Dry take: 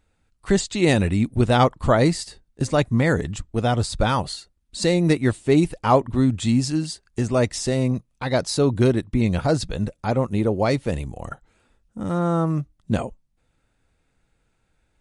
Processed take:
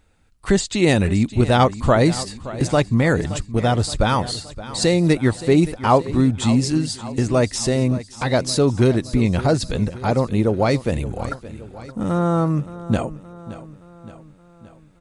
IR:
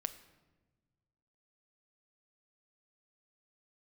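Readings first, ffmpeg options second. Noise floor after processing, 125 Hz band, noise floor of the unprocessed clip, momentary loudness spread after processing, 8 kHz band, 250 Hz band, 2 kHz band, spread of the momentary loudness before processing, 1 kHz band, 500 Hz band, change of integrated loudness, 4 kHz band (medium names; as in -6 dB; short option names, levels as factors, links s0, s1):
-49 dBFS, +2.5 dB, -69 dBFS, 12 LU, +3.5 dB, +2.5 dB, +2.5 dB, 11 LU, +2.5 dB, +2.0 dB, +2.0 dB, +3.0 dB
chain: -filter_complex "[0:a]asplit=2[s0][s1];[s1]acompressor=threshold=0.0355:ratio=6,volume=1.19[s2];[s0][s2]amix=inputs=2:normalize=0,aecho=1:1:571|1142|1713|2284|2855:0.168|0.0923|0.0508|0.0279|0.0154"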